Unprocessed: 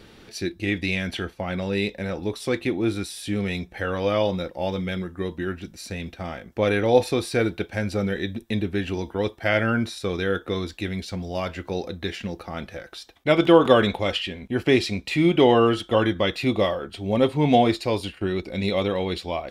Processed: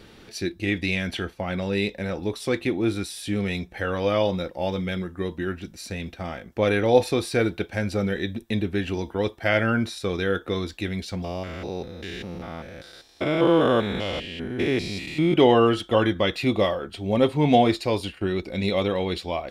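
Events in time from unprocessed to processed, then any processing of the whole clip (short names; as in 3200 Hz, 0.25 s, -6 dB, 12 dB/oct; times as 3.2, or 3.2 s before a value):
11.24–15.34 stepped spectrum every 0.2 s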